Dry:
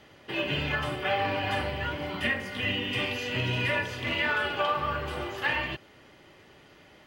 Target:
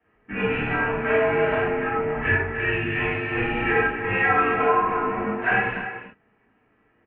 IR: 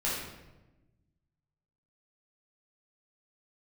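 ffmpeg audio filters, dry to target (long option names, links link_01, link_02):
-filter_complex "[0:a]afwtdn=0.0126,asplit=2[link_01][link_02];[link_02]adelay=290,highpass=300,lowpass=3400,asoftclip=type=hard:threshold=-24dB,volume=-9dB[link_03];[link_01][link_03]amix=inputs=2:normalize=0[link_04];[1:a]atrim=start_sample=2205,atrim=end_sample=4410[link_05];[link_04][link_05]afir=irnorm=-1:irlink=0,highpass=frequency=200:width_type=q:width=0.5412,highpass=frequency=200:width_type=q:width=1.307,lowpass=frequency=2500:width_type=q:width=0.5176,lowpass=frequency=2500:width_type=q:width=0.7071,lowpass=frequency=2500:width_type=q:width=1.932,afreqshift=-140,volume=1.5dB"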